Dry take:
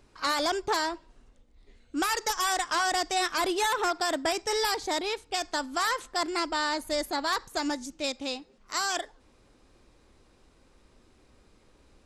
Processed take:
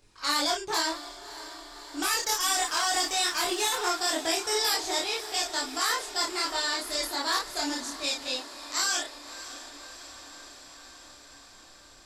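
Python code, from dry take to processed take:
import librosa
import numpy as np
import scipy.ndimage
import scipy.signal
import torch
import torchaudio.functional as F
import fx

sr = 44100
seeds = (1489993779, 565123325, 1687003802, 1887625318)

y = fx.backlash(x, sr, play_db=-50.5, at=(2.15, 3.86))
y = fx.high_shelf(y, sr, hz=2500.0, db=10.5)
y = fx.doubler(y, sr, ms=31.0, db=-3.0)
y = fx.chorus_voices(y, sr, voices=2, hz=0.19, base_ms=22, depth_ms=3.7, mix_pct=50)
y = fx.echo_diffused(y, sr, ms=602, feedback_pct=72, wet_db=-14.5)
y = y * 10.0 ** (-2.5 / 20.0)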